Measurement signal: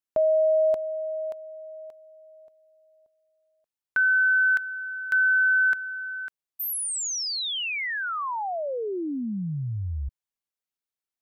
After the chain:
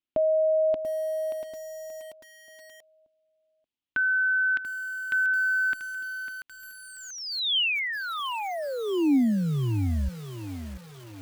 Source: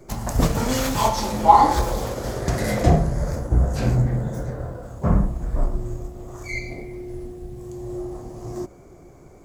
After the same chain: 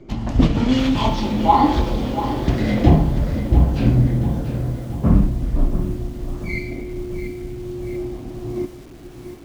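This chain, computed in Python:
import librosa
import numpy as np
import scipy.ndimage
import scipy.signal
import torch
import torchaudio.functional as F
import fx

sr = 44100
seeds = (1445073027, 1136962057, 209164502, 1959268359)

y = fx.curve_eq(x, sr, hz=(180.0, 280.0, 450.0, 1600.0, 3100.0, 8000.0, 12000.0), db=(0, 7, -5, -7, 3, -21, -26))
y = fx.echo_crushed(y, sr, ms=687, feedback_pct=55, bits=7, wet_db=-11)
y = y * librosa.db_to_amplitude(3.5)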